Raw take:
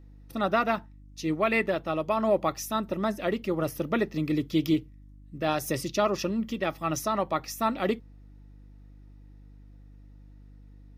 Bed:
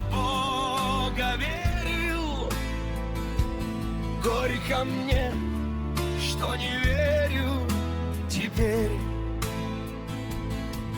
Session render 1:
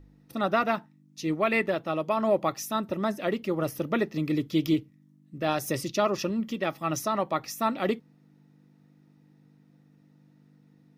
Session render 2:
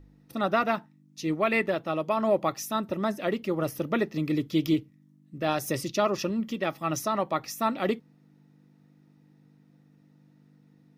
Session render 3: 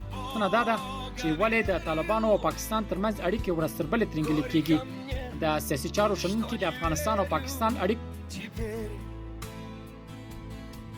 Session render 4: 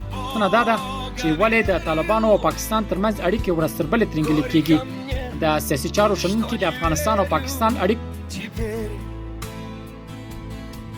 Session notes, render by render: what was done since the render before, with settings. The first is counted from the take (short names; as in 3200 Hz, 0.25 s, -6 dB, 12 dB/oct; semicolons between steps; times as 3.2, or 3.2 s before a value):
de-hum 50 Hz, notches 2
nothing audible
add bed -9.5 dB
gain +7.5 dB